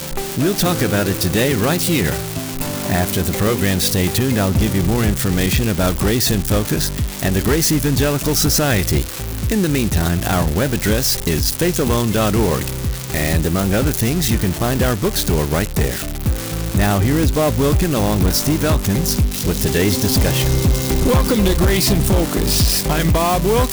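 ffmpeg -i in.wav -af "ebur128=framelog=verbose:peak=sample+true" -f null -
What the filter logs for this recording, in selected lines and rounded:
Integrated loudness:
  I:         -17.1 LUFS
  Threshold: -27.1 LUFS
Loudness range:
  LRA:         2.3 LU
  Threshold: -37.2 LUFS
  LRA low:   -18.0 LUFS
  LRA high:  -15.7 LUFS
Sample peak:
  Peak:      -10.0 dBFS
True peak:
  Peak:       -7.6 dBFS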